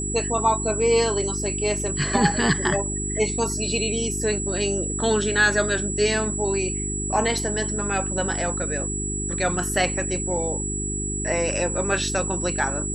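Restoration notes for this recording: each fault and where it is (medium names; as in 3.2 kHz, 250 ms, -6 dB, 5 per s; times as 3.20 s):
hum 50 Hz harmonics 8 -30 dBFS
whine 7.8 kHz -28 dBFS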